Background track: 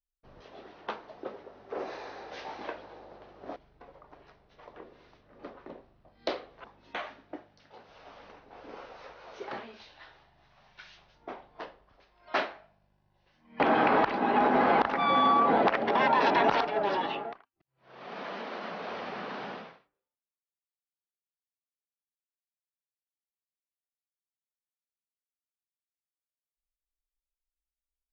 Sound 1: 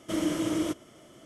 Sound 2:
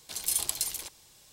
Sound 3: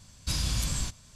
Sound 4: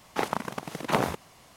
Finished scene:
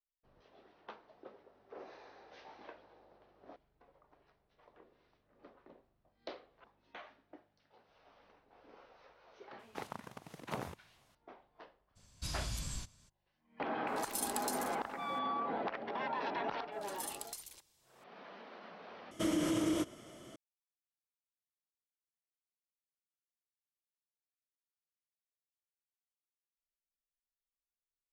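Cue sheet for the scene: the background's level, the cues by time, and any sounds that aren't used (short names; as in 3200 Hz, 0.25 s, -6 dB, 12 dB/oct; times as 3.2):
background track -14 dB
9.59 add 4 -16 dB + bell 97 Hz +7.5 dB
11.95 add 3 -11 dB, fades 0.02 s
13.87 add 2 -10.5 dB
16.72 add 2 -16 dB
19.11 replace with 1 -0.5 dB + limiter -24 dBFS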